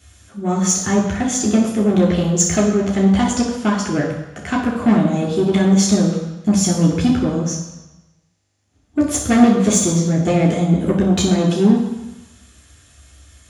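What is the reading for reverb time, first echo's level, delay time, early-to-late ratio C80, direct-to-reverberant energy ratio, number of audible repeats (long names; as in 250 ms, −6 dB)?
1.0 s, no echo audible, no echo audible, 7.0 dB, −3.0 dB, no echo audible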